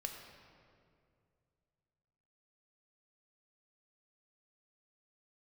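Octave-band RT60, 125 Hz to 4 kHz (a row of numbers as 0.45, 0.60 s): 3.2, 2.7, 2.6, 2.1, 1.8, 1.4 s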